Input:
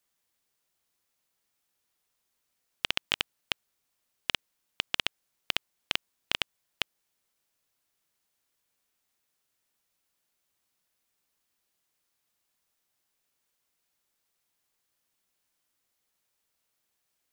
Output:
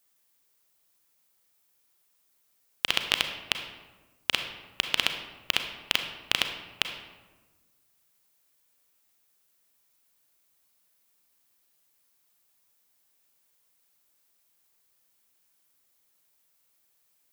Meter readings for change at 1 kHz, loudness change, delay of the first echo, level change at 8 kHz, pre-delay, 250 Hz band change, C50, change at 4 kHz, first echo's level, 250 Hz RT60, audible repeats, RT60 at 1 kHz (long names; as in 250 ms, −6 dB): +4.5 dB, +4.0 dB, no echo audible, +6.5 dB, 32 ms, +4.0 dB, 7.0 dB, +4.5 dB, no echo audible, 1.6 s, no echo audible, 1.2 s